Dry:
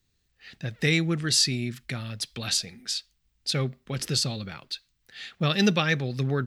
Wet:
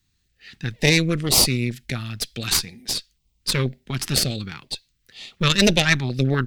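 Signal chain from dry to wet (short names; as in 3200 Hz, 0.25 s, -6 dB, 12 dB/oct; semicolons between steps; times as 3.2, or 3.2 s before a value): added harmonics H 4 -7 dB, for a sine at -8.5 dBFS; stepped notch 4.1 Hz 510–1600 Hz; gain +4 dB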